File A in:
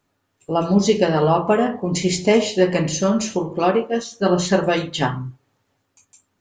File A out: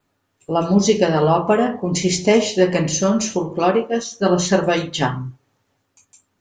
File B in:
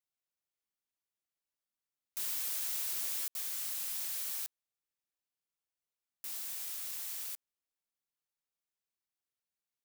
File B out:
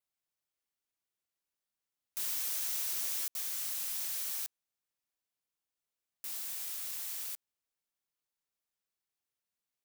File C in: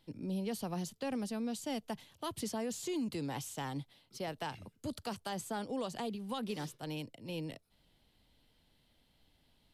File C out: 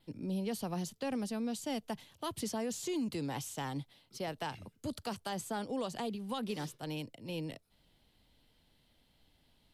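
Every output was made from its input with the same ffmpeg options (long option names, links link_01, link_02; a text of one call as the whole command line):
ffmpeg -i in.wav -af "adynamicequalizer=threshold=0.00282:dfrequency=5900:dqfactor=6.1:tfrequency=5900:tqfactor=6.1:attack=5:release=100:ratio=0.375:range=3:mode=boostabove:tftype=bell,volume=1dB" out.wav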